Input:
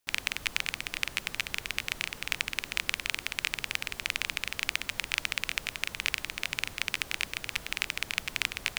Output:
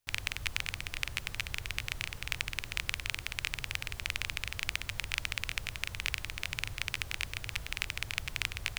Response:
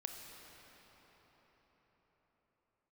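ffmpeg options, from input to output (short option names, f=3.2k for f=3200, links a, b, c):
-af "lowshelf=f=150:t=q:w=1.5:g=10.5,volume=-4dB"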